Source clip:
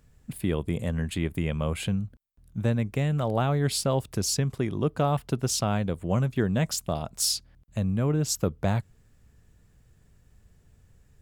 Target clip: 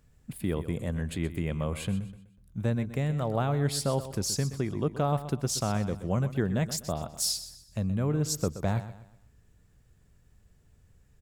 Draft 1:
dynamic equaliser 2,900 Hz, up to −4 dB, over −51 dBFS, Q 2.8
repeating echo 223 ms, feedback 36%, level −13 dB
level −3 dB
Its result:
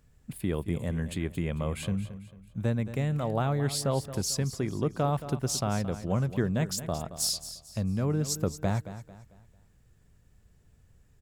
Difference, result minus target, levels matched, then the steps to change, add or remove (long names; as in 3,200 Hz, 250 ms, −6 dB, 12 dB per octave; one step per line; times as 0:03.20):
echo 98 ms late
change: repeating echo 125 ms, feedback 36%, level −13 dB